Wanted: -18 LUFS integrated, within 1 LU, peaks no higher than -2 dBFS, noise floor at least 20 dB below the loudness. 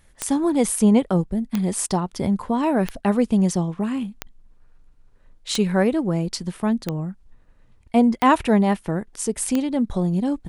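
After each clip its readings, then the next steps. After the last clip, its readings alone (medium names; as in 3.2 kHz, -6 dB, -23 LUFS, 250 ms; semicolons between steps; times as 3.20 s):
clicks found 8; loudness -21.5 LUFS; peak level -4.0 dBFS; loudness target -18.0 LUFS
-> de-click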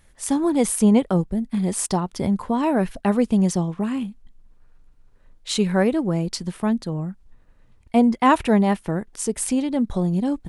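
clicks found 0; loudness -21.5 LUFS; peak level -4.0 dBFS; loudness target -18.0 LUFS
-> trim +3.5 dB; peak limiter -2 dBFS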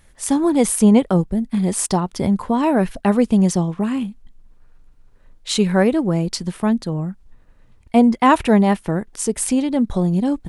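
loudness -18.0 LUFS; peak level -2.0 dBFS; noise floor -51 dBFS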